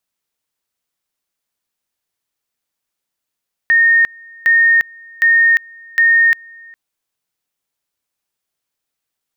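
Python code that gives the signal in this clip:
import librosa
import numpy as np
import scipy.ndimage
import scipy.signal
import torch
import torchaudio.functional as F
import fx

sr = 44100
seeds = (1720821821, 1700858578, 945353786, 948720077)

y = fx.two_level_tone(sr, hz=1840.0, level_db=-7.5, drop_db=28.0, high_s=0.35, low_s=0.41, rounds=4)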